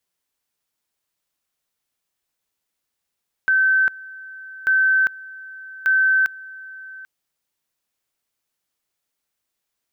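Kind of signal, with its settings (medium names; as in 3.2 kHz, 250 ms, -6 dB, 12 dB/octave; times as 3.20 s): two-level tone 1.54 kHz -13.5 dBFS, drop 21 dB, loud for 0.40 s, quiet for 0.79 s, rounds 3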